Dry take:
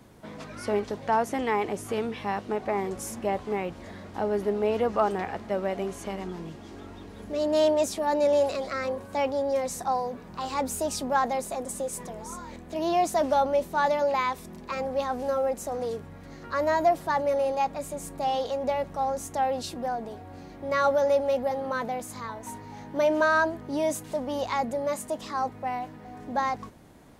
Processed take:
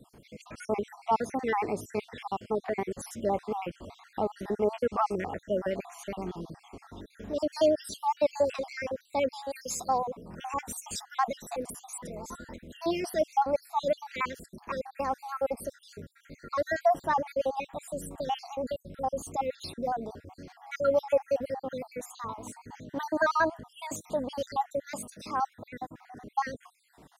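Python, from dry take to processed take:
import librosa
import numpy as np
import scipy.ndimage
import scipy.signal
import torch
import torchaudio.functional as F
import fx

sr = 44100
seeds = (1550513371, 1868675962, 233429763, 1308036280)

y = fx.spec_dropout(x, sr, seeds[0], share_pct=59)
y = fx.vibrato(y, sr, rate_hz=10.0, depth_cents=37.0)
y = fx.tilt_shelf(y, sr, db=-6.5, hz=1200.0, at=(9.33, 9.89))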